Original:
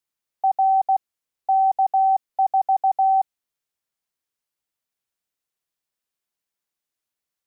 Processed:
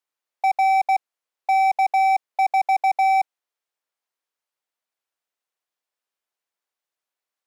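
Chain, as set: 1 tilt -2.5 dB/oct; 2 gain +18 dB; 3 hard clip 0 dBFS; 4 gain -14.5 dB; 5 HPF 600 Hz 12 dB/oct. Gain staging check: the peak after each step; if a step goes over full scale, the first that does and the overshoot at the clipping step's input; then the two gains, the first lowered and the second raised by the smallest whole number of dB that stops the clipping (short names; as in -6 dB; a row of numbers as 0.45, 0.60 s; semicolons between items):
-13.0, +5.0, 0.0, -14.5, -12.5 dBFS; step 2, 5.0 dB; step 2 +13 dB, step 4 -9.5 dB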